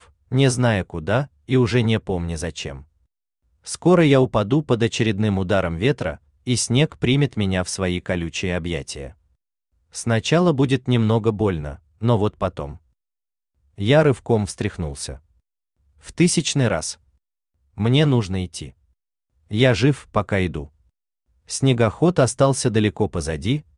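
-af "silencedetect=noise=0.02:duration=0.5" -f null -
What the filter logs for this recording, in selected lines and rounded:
silence_start: 2.81
silence_end: 3.66 | silence_duration: 0.85
silence_start: 9.09
silence_end: 9.95 | silence_duration: 0.85
silence_start: 12.76
silence_end: 13.78 | silence_duration: 1.03
silence_start: 15.16
silence_end: 16.06 | silence_duration: 0.90
silence_start: 16.93
silence_end: 17.78 | silence_duration: 0.85
silence_start: 18.69
silence_end: 19.51 | silence_duration: 0.82
silence_start: 20.66
silence_end: 21.50 | silence_duration: 0.84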